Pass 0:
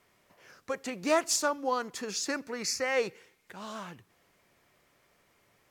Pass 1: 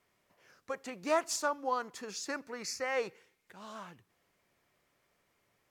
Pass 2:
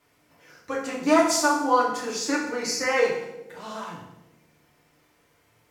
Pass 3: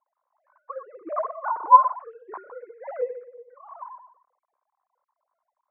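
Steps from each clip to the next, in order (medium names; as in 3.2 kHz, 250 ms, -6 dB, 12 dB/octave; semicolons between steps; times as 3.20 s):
dynamic bell 990 Hz, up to +6 dB, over -43 dBFS, Q 0.76; trim -7.5 dB
band-passed feedback delay 179 ms, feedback 60%, band-pass 310 Hz, level -14 dB; FDN reverb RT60 0.78 s, low-frequency decay 1.5×, high-frequency decay 0.9×, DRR -5 dB; trim +5 dB
formants replaced by sine waves; four-pole ladder low-pass 1.1 kHz, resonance 80%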